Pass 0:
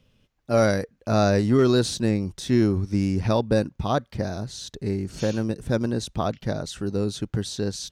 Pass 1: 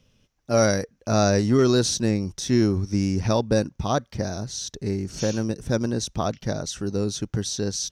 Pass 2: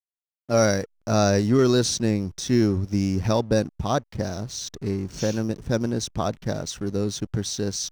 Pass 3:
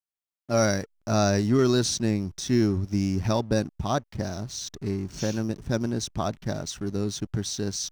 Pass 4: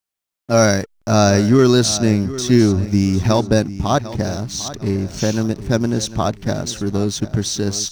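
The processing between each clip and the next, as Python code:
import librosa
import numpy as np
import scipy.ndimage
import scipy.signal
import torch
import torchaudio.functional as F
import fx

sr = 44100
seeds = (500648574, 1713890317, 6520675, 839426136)

y1 = fx.peak_eq(x, sr, hz=5800.0, db=10.5, octaves=0.35)
y2 = fx.backlash(y1, sr, play_db=-38.0)
y3 = fx.peak_eq(y2, sr, hz=490.0, db=-7.5, octaves=0.22)
y3 = y3 * librosa.db_to_amplitude(-2.0)
y4 = fx.echo_feedback(y3, sr, ms=749, feedback_pct=31, wet_db=-15)
y4 = y4 * librosa.db_to_amplitude(9.0)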